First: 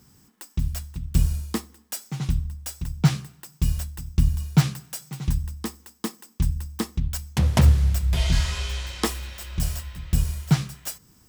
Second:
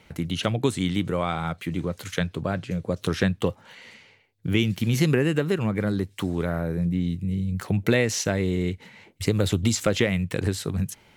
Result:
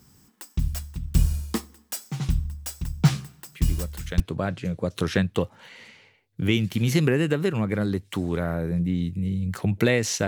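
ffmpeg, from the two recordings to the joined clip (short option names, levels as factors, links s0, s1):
-filter_complex "[1:a]asplit=2[s0][s1];[0:a]apad=whole_dur=10.27,atrim=end=10.27,atrim=end=4.202[s2];[s1]atrim=start=2.258:end=8.33[s3];[s0]atrim=start=1.58:end=2.26,asetpts=PTS-STARTPTS,volume=0.422,afade=t=in:d=0.004:c=hsin,afade=t=out:st=0.676:d=0.004:c=hsin,adelay=3520[s4];[s2][s3]acrossfade=d=0.004:c1=hsin:c2=hsin[s5];[s5][s4]amix=inputs=2:normalize=0"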